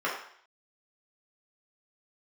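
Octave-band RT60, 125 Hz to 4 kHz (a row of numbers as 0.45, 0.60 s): 0.45, 0.55, 0.55, 0.60, 0.65, 0.60 s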